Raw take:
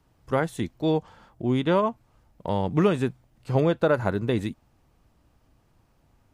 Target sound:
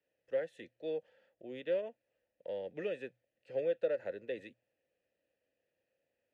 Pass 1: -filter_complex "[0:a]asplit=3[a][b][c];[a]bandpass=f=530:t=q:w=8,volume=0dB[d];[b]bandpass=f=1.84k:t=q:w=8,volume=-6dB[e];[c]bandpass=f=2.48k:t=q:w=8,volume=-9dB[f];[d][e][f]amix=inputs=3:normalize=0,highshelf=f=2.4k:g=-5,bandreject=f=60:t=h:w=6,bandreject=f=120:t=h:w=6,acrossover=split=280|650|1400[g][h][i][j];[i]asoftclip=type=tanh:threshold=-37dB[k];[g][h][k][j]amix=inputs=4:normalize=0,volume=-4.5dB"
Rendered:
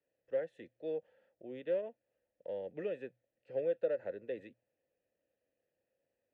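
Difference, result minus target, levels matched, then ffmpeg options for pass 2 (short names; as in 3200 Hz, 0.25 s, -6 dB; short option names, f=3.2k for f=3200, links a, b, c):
4000 Hz band -7.0 dB
-filter_complex "[0:a]asplit=3[a][b][c];[a]bandpass=f=530:t=q:w=8,volume=0dB[d];[b]bandpass=f=1.84k:t=q:w=8,volume=-6dB[e];[c]bandpass=f=2.48k:t=q:w=8,volume=-9dB[f];[d][e][f]amix=inputs=3:normalize=0,highshelf=f=2.4k:g=7,bandreject=f=60:t=h:w=6,bandreject=f=120:t=h:w=6,acrossover=split=280|650|1400[g][h][i][j];[i]asoftclip=type=tanh:threshold=-37dB[k];[g][h][k][j]amix=inputs=4:normalize=0,volume=-4.5dB"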